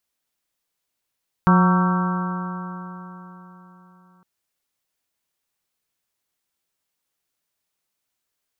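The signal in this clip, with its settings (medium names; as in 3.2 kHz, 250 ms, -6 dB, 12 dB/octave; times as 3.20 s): stretched partials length 2.76 s, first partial 179 Hz, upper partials -13.5/-18/-16/-8.5/-7.5/-9.5/-15.5 dB, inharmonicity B 0.0029, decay 3.86 s, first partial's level -12 dB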